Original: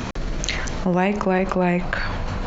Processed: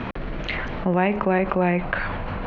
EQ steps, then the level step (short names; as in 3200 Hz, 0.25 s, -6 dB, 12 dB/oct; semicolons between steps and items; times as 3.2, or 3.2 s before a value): LPF 3000 Hz 24 dB/oct; low shelf 120 Hz -5.5 dB; 0.0 dB